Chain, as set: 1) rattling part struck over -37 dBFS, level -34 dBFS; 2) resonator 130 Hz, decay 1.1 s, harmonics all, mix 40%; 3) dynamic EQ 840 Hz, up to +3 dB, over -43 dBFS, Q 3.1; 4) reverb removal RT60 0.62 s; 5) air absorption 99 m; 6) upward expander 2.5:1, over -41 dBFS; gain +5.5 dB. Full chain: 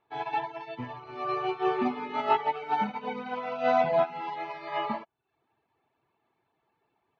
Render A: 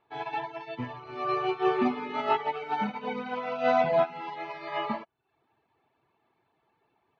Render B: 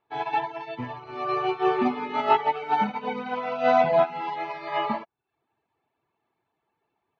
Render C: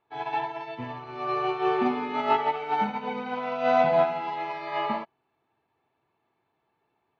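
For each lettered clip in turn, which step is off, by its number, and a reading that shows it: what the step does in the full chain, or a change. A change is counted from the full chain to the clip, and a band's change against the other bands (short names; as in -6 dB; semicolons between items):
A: 3, 1 kHz band -2.0 dB; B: 2, loudness change +4.0 LU; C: 4, crest factor change -2.0 dB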